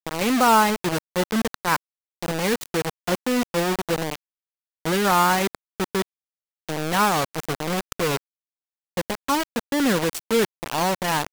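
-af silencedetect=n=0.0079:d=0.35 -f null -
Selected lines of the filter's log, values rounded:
silence_start: 1.76
silence_end: 2.23 | silence_duration: 0.46
silence_start: 4.15
silence_end: 4.85 | silence_duration: 0.70
silence_start: 6.02
silence_end: 6.69 | silence_duration: 0.67
silence_start: 8.17
silence_end: 8.97 | silence_duration: 0.80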